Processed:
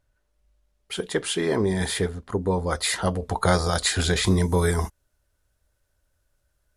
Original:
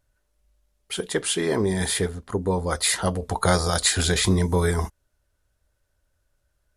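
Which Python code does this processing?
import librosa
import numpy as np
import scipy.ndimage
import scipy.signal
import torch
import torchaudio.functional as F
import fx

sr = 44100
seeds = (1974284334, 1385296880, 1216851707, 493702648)

y = fx.high_shelf(x, sr, hz=6700.0, db=fx.steps((0.0, -7.5), (4.26, 3.0)))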